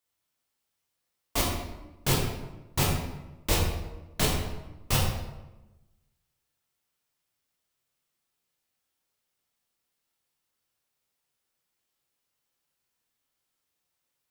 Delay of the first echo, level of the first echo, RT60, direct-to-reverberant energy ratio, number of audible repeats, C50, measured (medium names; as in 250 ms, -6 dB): no echo, no echo, 1.1 s, -3.5 dB, no echo, 2.0 dB